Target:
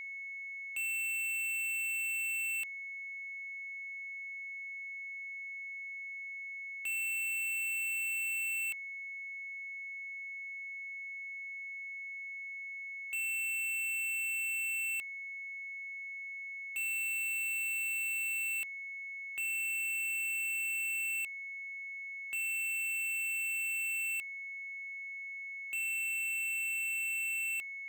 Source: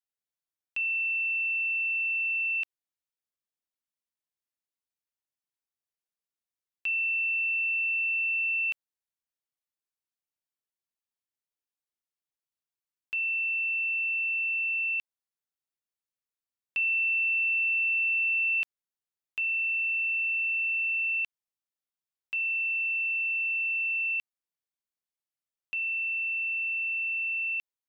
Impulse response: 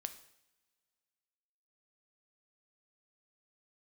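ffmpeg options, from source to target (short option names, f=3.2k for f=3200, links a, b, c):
-af "asoftclip=type=hard:threshold=-37.5dB,aeval=exprs='val(0)+0.00501*sin(2*PI*2200*n/s)':c=same,asoftclip=type=tanh:threshold=-38.5dB,volume=6dB"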